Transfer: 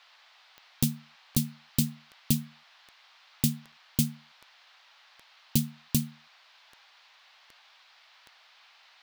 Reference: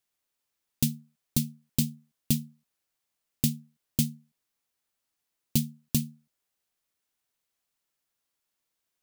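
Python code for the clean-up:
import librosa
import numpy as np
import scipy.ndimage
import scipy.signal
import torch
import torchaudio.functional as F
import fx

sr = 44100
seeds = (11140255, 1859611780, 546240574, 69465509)

y = fx.fix_declick_ar(x, sr, threshold=10.0)
y = fx.fix_interpolate(y, sr, at_s=(0.83, 3.72), length_ms=3.6)
y = fx.noise_reduce(y, sr, print_start_s=7.61, print_end_s=8.11, reduce_db=24.0)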